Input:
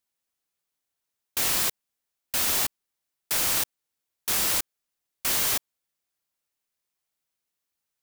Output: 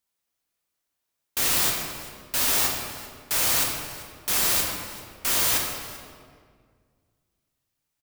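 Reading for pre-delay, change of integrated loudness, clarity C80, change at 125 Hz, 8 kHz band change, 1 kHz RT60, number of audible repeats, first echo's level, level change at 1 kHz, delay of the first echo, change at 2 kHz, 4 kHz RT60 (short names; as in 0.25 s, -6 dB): 10 ms, +1.5 dB, 3.5 dB, +5.5 dB, +2.5 dB, 1.8 s, 1, -19.0 dB, +4.0 dB, 0.391 s, +3.0 dB, 1.3 s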